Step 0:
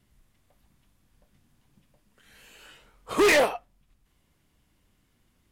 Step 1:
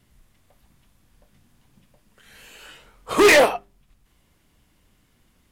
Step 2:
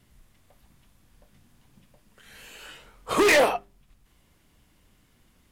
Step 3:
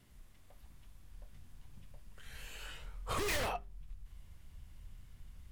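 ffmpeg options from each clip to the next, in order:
-af "bandreject=f=50:t=h:w=6,bandreject=f=100:t=h:w=6,bandreject=f=150:t=h:w=6,bandreject=f=200:t=h:w=6,bandreject=f=250:t=h:w=6,bandreject=f=300:t=h:w=6,bandreject=f=350:t=h:w=6,bandreject=f=400:t=h:w=6,volume=2.11"
-af "alimiter=limit=0.211:level=0:latency=1:release=29"
-af "aeval=exprs='0.106*(abs(mod(val(0)/0.106+3,4)-2)-1)':c=same,asubboost=boost=9.5:cutoff=96,acompressor=threshold=0.01:ratio=1.5,volume=0.668"

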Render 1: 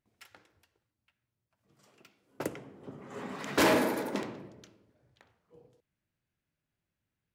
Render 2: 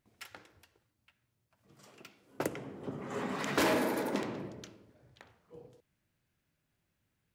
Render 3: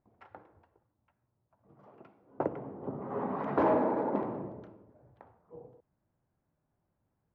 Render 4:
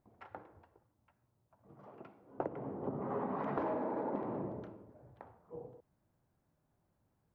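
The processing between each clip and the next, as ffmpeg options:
-af "acompressor=threshold=0.01:ratio=2,volume=2"
-af "lowpass=f=890:t=q:w=1.7,volume=1.12"
-af "acompressor=threshold=0.0158:ratio=6,volume=1.26"

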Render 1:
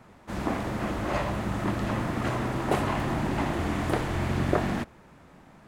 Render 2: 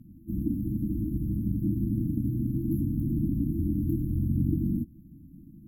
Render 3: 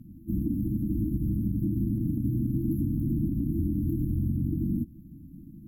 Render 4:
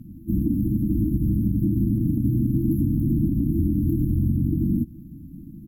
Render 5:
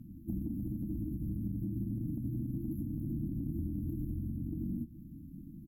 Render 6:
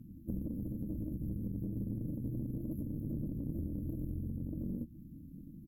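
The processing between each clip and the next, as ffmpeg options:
-filter_complex "[0:a]afftfilt=real='re*(1-between(b*sr/4096,340,11000))':imag='im*(1-between(b*sr/4096,340,11000))':win_size=4096:overlap=0.75,asplit=2[s0][s1];[s1]acompressor=threshold=0.0141:ratio=6,volume=1[s2];[s0][s2]amix=inputs=2:normalize=0"
-af "alimiter=limit=0.075:level=0:latency=1:release=103,volume=1.41"
-filter_complex "[0:a]asplit=2[s0][s1];[s1]adelay=204.1,volume=0.0447,highshelf=f=4000:g=-4.59[s2];[s0][s2]amix=inputs=2:normalize=0,volume=2"
-filter_complex "[0:a]acompressor=threshold=0.0562:ratio=6,asplit=2[s0][s1];[s1]adelay=26,volume=0.266[s2];[s0][s2]amix=inputs=2:normalize=0,volume=0.376"
-af "aeval=exprs='0.0501*(cos(1*acos(clip(val(0)/0.0501,-1,1)))-cos(1*PI/2))+0.0112*(cos(2*acos(clip(val(0)/0.0501,-1,1)))-cos(2*PI/2))+0.000398*(cos(6*acos(clip(val(0)/0.0501,-1,1)))-cos(6*PI/2))':c=same,volume=0.794"

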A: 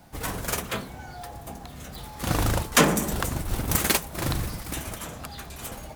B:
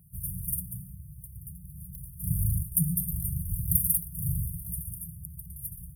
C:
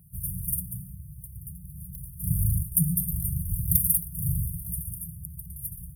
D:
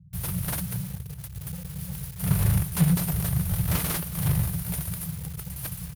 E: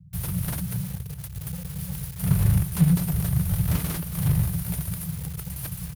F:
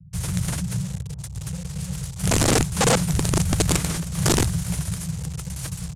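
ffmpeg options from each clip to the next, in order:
-af "afftfilt=real='re*(1-between(b*sr/4096,190,8800))':imag='im*(1-between(b*sr/4096,190,8800))':win_size=4096:overlap=0.75,highpass=47,equalizer=f=13000:t=o:w=0.26:g=6"
-af "asoftclip=type=hard:threshold=0.398,volume=1.33"
-filter_complex "[0:a]asplit=2[s0][s1];[s1]highpass=f=720:p=1,volume=25.1,asoftclip=type=tanh:threshold=0.531[s2];[s0][s2]amix=inputs=2:normalize=0,lowpass=f=1200:p=1,volume=0.501,acrossover=split=180[s3][s4];[s4]acrusher=bits=6:mix=0:aa=0.000001[s5];[s3][s5]amix=inputs=2:normalize=0,aecho=1:1:217|434|651|868|1085:0.119|0.0689|0.04|0.0232|0.0134"
-filter_complex "[0:a]acrossover=split=330[s0][s1];[s1]acompressor=threshold=0.0141:ratio=2.5[s2];[s0][s2]amix=inputs=2:normalize=0,volume=1.33"
-filter_complex "[0:a]acrossover=split=330|1100[s0][s1][s2];[s2]acrusher=bits=5:mix=0:aa=0.5[s3];[s0][s1][s3]amix=inputs=3:normalize=0,aeval=exprs='(mod(6.31*val(0)+1,2)-1)/6.31':c=same,lowpass=f=7500:t=q:w=2.5,volume=1.41"

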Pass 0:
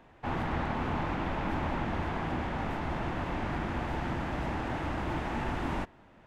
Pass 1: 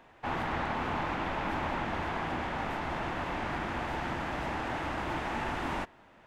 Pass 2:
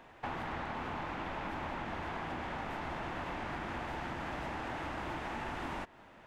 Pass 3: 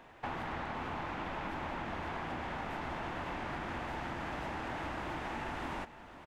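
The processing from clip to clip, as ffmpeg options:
-af "lowshelf=f=370:g=-9,volume=1.41"
-af "acompressor=threshold=0.0126:ratio=6,volume=1.19"
-af "aecho=1:1:514:0.188"

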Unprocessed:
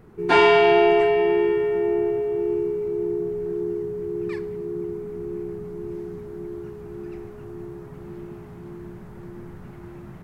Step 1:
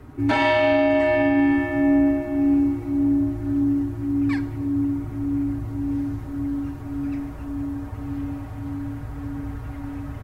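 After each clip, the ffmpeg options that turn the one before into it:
-af "aecho=1:1:6:0.84,alimiter=limit=0.168:level=0:latency=1:release=117,afreqshift=-67,volume=1.68"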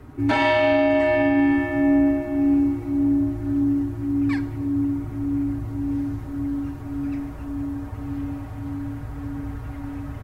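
-af anull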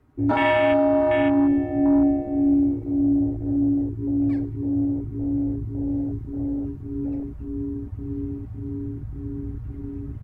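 -af "afwtdn=0.0708"

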